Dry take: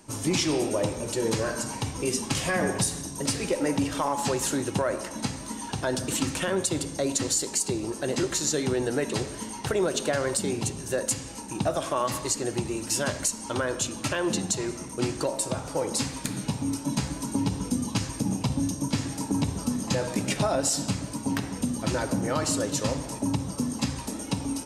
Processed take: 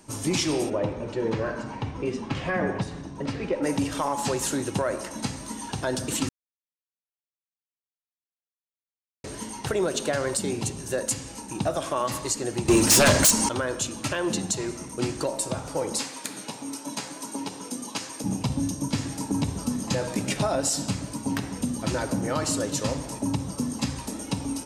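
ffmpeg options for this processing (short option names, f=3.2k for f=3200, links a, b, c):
-filter_complex "[0:a]asplit=3[a][b][c];[a]afade=t=out:st=0.69:d=0.02[d];[b]lowpass=2.4k,afade=t=in:st=0.69:d=0.02,afade=t=out:st=3.62:d=0.02[e];[c]afade=t=in:st=3.62:d=0.02[f];[d][e][f]amix=inputs=3:normalize=0,asettb=1/sr,asplit=3[g][h][i];[g]atrim=end=12.684[j];[h]atrim=start=12.68:end=13.49,asetpts=PTS-STARTPTS,afade=t=in:d=0.004:c=qsin,afade=t=out:st=0.806:d=0.004:c=qsin,aeval=exprs='0.237*sin(PI/2*3.55*val(0)/0.237)':c=same[k];[i]atrim=start=13.486[l];[j][k]acrossfade=d=0.004:c1=hsin:c2=qsin[m];[m][l]acrossfade=d=0.004:c1=qsin:c2=hsin,asettb=1/sr,asplit=3[n][o][p];[n]atrim=end=15.994[q];[o]atrim=start=15.99:end=18.24,asetpts=PTS-STARTPTS,afade=t=in:d=0.004:c=qsin,afade=t=out:st=2.246:d=0.004:c=qsin,highpass=380[r];[p]atrim=start=18.236[s];[q][r]acrossfade=d=0.004:c1=hsin:c2=qsin[t];[t][s]acrossfade=d=0.004:c1=qsin:c2=hsin,asplit=3[u][v][w];[u]atrim=end=6.29,asetpts=PTS-STARTPTS,afade=t=out:st=6.286:d=0.004:c=hsin[x];[v]atrim=start=6.29:end=9.24,asetpts=PTS-STARTPTS,volume=0[y];[w]atrim=start=9.24,asetpts=PTS-STARTPTS,afade=t=in:d=0.004:c=hsin[z];[x][y][z]concat=n=3:v=0:a=1"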